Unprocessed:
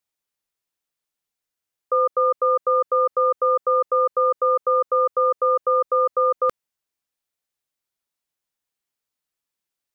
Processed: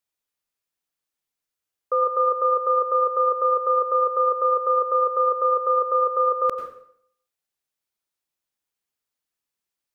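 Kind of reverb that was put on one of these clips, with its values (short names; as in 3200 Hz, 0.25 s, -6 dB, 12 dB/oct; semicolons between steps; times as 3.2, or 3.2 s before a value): plate-style reverb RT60 0.63 s, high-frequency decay 0.9×, pre-delay 80 ms, DRR 5.5 dB; gain -2 dB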